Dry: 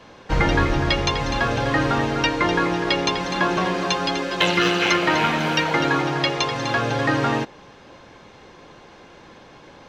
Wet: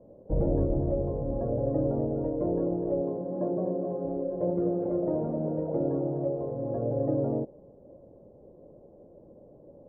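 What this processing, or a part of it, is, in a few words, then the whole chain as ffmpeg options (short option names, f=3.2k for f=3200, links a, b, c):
under water: -filter_complex "[0:a]lowpass=f=520:w=0.5412,lowpass=f=520:w=1.3066,equalizer=f=590:t=o:w=0.4:g=12,asettb=1/sr,asplit=3[a][b][c];[a]atrim=end=3.014[d];[b]atrim=start=3.01:end=4.05,asetpts=PTS-STARTPTS,afade=t=in:d=0.004:c=qsin,afade=t=out:st=1.036:d=0.004:c=qsin,highpass=130[e];[c]atrim=start=4.046[f];[d][e]acrossfade=d=0.004:c1=hsin:c2=qsin[g];[g][f]acrossfade=d=0.004:c1=qsin:c2=hsin,volume=-6dB"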